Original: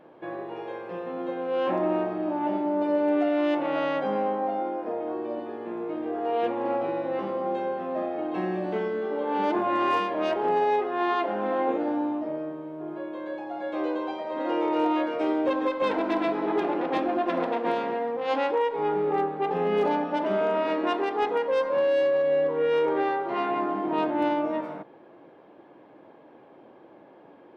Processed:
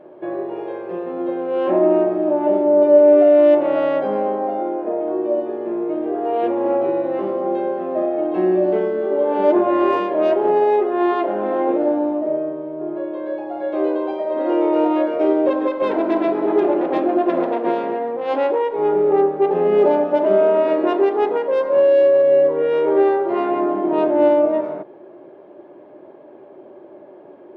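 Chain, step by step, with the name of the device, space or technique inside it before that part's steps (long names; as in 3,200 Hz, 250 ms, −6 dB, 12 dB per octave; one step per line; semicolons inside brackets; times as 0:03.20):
inside a helmet (high-shelf EQ 3,300 Hz −8.5 dB; hollow resonant body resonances 380/590 Hz, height 13 dB, ringing for 55 ms)
level +3 dB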